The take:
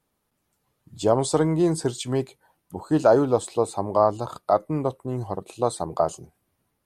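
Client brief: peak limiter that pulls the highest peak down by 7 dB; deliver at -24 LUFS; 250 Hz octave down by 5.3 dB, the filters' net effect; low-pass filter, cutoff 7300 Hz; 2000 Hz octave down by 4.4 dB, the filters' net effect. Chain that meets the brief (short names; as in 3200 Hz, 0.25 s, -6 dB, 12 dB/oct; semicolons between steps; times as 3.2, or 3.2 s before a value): LPF 7300 Hz; bell 250 Hz -8 dB; bell 2000 Hz -6.5 dB; gain +5 dB; limiter -9.5 dBFS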